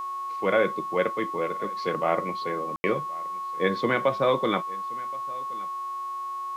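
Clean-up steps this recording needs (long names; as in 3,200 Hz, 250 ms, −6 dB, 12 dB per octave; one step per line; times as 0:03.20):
hum removal 366.8 Hz, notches 38
notch filter 1,100 Hz, Q 30
ambience match 0:02.76–0:02.84
echo removal 1,073 ms −21.5 dB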